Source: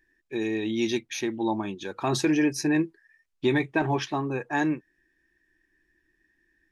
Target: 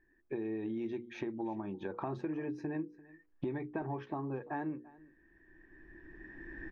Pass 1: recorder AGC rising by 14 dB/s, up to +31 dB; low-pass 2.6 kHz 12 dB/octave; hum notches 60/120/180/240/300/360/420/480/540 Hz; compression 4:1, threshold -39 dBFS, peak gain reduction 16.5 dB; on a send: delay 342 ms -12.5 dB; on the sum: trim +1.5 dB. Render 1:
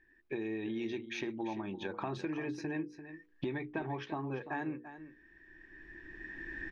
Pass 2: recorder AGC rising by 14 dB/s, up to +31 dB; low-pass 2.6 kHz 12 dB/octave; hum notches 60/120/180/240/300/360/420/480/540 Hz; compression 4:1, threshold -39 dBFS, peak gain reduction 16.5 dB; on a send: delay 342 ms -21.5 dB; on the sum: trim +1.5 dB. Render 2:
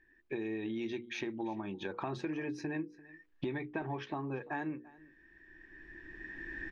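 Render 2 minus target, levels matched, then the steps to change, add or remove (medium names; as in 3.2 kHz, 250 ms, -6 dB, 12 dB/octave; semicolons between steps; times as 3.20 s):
2 kHz band +6.0 dB
change: low-pass 1.2 kHz 12 dB/octave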